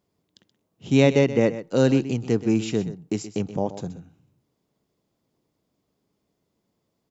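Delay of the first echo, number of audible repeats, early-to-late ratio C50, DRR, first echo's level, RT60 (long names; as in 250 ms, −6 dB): 127 ms, 1, no reverb audible, no reverb audible, −13.5 dB, no reverb audible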